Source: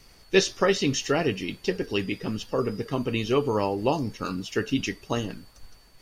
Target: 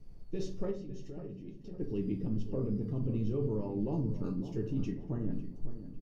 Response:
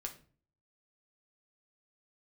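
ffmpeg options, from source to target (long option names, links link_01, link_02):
-filter_complex "[0:a]asettb=1/sr,asplit=3[link_01][link_02][link_03];[link_01]atrim=end=4.914[link_04];[link_02]atrim=start=4.91:end=5.32,asetpts=PTS-STARTPTS,afade=type=in:duration=0.004:curve=qsin,afade=type=out:start_time=0.406:duration=0.004:curve=qsin,highshelf=frequency=2500:width_type=q:width=3:gain=-11[link_05];[link_03]atrim=start=5.316[link_06];[link_04][link_05]acrossfade=duration=0.004:curve1=hsin:curve2=qsin[link_07];[link_07][link_06]acrossfade=duration=0.004:curve1=qsin:curve2=hsin,asplit=2[link_08][link_09];[link_09]asoftclip=type=hard:threshold=-21.5dB,volume=-3.5dB[link_10];[link_08][link_10]amix=inputs=2:normalize=0,firequalizer=gain_entry='entry(160,0);entry(490,-10);entry(1400,-26)':delay=0.05:min_phase=1,alimiter=level_in=0.5dB:limit=-24dB:level=0:latency=1:release=15,volume=-0.5dB,asettb=1/sr,asplit=3[link_11][link_12][link_13];[link_11]atrim=end=0.714[link_14];[link_12]atrim=start=0.71:end=1.8,asetpts=PTS-STARTPTS,afade=type=in:duration=0.004:curve=qsin,afade=type=out:start_time=1.086:duration=0.004:curve=qsin,acompressor=threshold=-42dB:ratio=6[link_15];[link_13]atrim=start=1.796[link_16];[link_14][link_15]acrossfade=duration=0.004:curve1=hsin:curve2=qsin[link_17];[link_17][link_16]acrossfade=duration=0.004:curve1=qsin:curve2=hsin,asplit=2[link_18][link_19];[link_19]adelay=552,lowpass=frequency=2000:poles=1,volume=-11.5dB,asplit=2[link_20][link_21];[link_21]adelay=552,lowpass=frequency=2000:poles=1,volume=0.42,asplit=2[link_22][link_23];[link_23]adelay=552,lowpass=frequency=2000:poles=1,volume=0.42,asplit=2[link_24][link_25];[link_25]adelay=552,lowpass=frequency=2000:poles=1,volume=0.42[link_26];[link_18][link_20][link_22][link_24][link_26]amix=inputs=5:normalize=0[link_27];[1:a]atrim=start_sample=2205[link_28];[link_27][link_28]afir=irnorm=-1:irlink=0"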